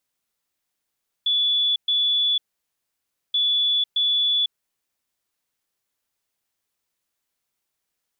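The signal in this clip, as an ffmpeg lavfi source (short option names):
-f lavfi -i "aevalsrc='0.133*sin(2*PI*3440*t)*clip(min(mod(mod(t,2.08),0.62),0.5-mod(mod(t,2.08),0.62))/0.005,0,1)*lt(mod(t,2.08),1.24)':d=4.16:s=44100"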